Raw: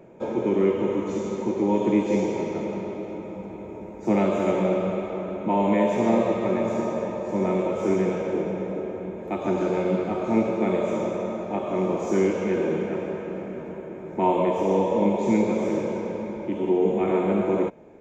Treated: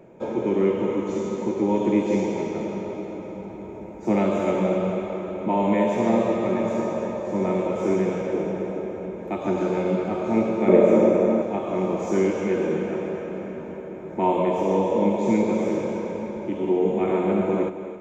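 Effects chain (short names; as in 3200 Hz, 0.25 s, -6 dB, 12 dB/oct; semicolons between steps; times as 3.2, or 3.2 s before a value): 10.68–11.42 graphic EQ 250/500/2000/4000 Hz +9/+9/+5/-4 dB; on a send: split-band echo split 300 Hz, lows 0.14 s, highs 0.265 s, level -12 dB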